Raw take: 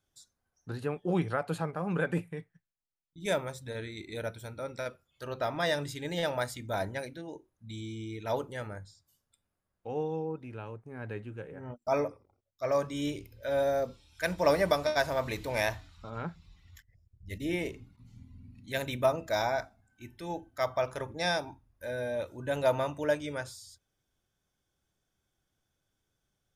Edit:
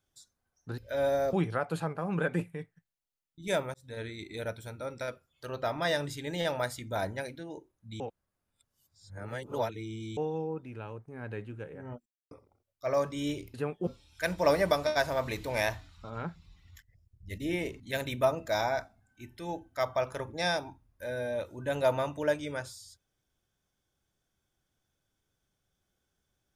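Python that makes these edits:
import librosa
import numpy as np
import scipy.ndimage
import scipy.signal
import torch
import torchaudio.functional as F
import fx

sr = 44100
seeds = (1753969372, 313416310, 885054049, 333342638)

y = fx.edit(x, sr, fx.swap(start_s=0.78, length_s=0.33, other_s=13.32, other_length_s=0.55),
    fx.fade_in_span(start_s=3.52, length_s=0.27),
    fx.reverse_span(start_s=7.78, length_s=2.17),
    fx.silence(start_s=11.84, length_s=0.25),
    fx.cut(start_s=17.8, length_s=0.81), tone=tone)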